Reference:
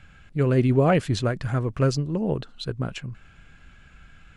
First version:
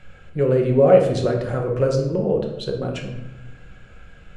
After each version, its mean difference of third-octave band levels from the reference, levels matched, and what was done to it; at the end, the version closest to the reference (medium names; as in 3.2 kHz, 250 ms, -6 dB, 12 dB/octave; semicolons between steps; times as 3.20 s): 5.0 dB: peaking EQ 500 Hz +13 dB 0.87 oct; de-hum 45.05 Hz, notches 27; in parallel at +3 dB: compression, threshold -27 dBFS, peak gain reduction 17.5 dB; on the sum: simulated room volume 340 m³, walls mixed, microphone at 0.99 m; trim -7.5 dB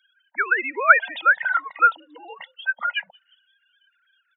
12.5 dB: formants replaced by sine waves; resonant high-pass 1.5 kHz, resonance Q 3.4; on a send: frequency-shifting echo 180 ms, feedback 49%, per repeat +75 Hz, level -22.5 dB; on the sum: spectral noise reduction 27 dB; trim +6 dB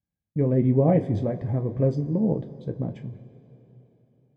7.0 dB: high-pass 73 Hz; gate -41 dBFS, range -33 dB; boxcar filter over 32 samples; two-slope reverb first 0.21 s, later 3.7 s, from -22 dB, DRR 4 dB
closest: first